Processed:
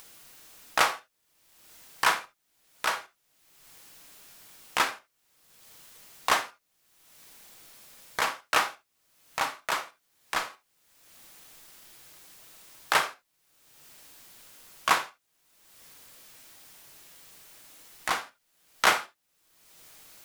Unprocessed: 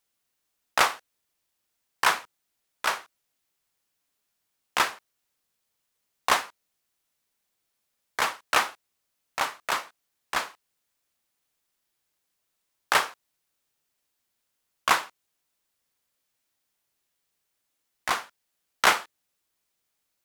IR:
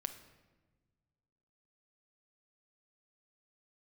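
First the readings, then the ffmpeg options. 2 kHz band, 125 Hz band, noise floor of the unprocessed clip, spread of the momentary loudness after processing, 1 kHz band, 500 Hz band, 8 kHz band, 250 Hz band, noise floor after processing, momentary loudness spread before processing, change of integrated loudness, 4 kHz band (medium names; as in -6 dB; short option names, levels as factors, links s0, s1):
-1.5 dB, -0.5 dB, -79 dBFS, 15 LU, -1.5 dB, -1.0 dB, -1.0 dB, -1.0 dB, -75 dBFS, 12 LU, -1.5 dB, -1.5 dB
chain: -filter_complex "[0:a]acompressor=mode=upward:threshold=0.0398:ratio=2.5[s0];[1:a]atrim=start_sample=2205,atrim=end_sample=3969[s1];[s0][s1]afir=irnorm=-1:irlink=0"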